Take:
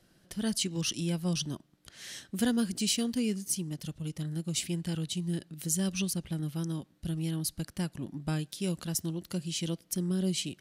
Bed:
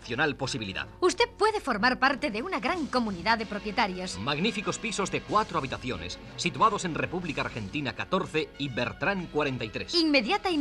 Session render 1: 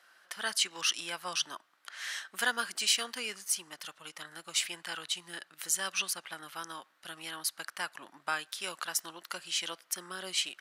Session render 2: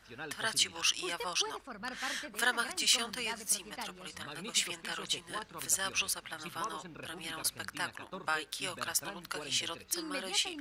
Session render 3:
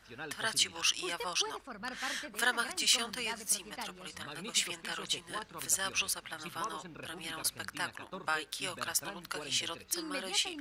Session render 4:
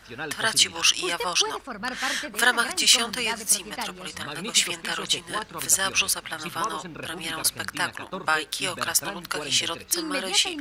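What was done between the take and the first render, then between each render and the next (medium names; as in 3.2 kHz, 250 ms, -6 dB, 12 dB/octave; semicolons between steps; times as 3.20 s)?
high-pass 860 Hz 12 dB/octave; peaking EQ 1.3 kHz +14 dB 1.9 oct
add bed -17.5 dB
no audible change
trim +10 dB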